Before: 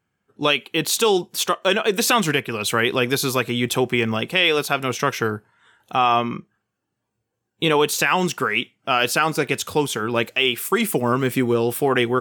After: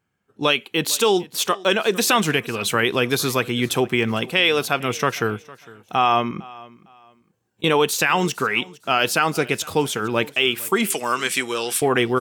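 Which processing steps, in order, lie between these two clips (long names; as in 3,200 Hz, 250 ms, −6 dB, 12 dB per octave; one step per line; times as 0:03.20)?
0:06.31–0:07.64: compressor whose output falls as the input rises −33 dBFS, ratio −1
0:10.90–0:11.82: meter weighting curve ITU-R 468
on a send: repeating echo 456 ms, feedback 27%, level −21.5 dB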